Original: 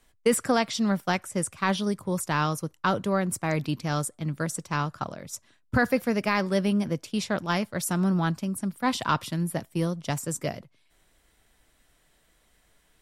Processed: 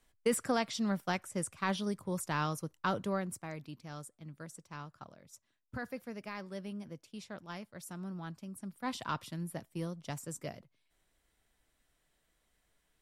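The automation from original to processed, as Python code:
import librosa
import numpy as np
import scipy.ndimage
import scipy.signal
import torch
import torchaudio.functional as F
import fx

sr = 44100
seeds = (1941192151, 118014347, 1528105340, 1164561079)

y = fx.gain(x, sr, db=fx.line((3.1, -8.0), (3.6, -18.0), (8.22, -18.0), (8.9, -11.5)))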